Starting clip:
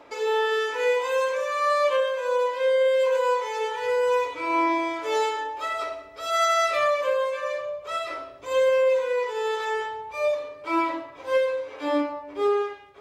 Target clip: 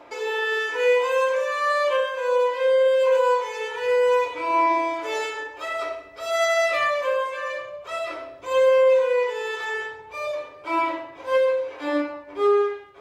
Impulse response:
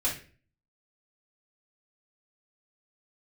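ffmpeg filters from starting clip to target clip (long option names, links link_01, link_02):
-filter_complex "[0:a]asplit=2[link_01][link_02];[link_02]highpass=240,lowpass=3200[link_03];[1:a]atrim=start_sample=2205,asetrate=52920,aresample=44100[link_04];[link_03][link_04]afir=irnorm=-1:irlink=0,volume=-8.5dB[link_05];[link_01][link_05]amix=inputs=2:normalize=0"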